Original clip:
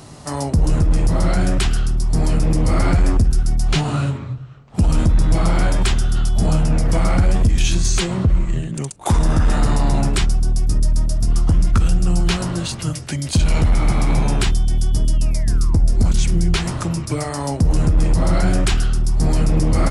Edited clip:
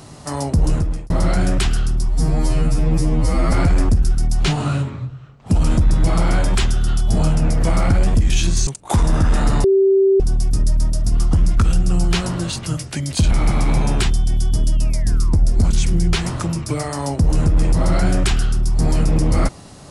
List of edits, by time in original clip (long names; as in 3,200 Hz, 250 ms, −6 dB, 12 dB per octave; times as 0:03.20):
0:00.69–0:01.10: fade out
0:02.08–0:02.80: time-stretch 2×
0:07.95–0:08.83: remove
0:09.80–0:10.36: beep over 388 Hz −10 dBFS
0:13.47–0:13.72: remove